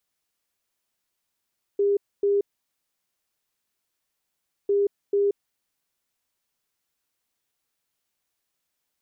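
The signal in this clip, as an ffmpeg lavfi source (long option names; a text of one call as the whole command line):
ffmpeg -f lavfi -i "aevalsrc='0.126*sin(2*PI*403*t)*clip(min(mod(mod(t,2.9),0.44),0.18-mod(mod(t,2.9),0.44))/0.005,0,1)*lt(mod(t,2.9),0.88)':duration=5.8:sample_rate=44100" out.wav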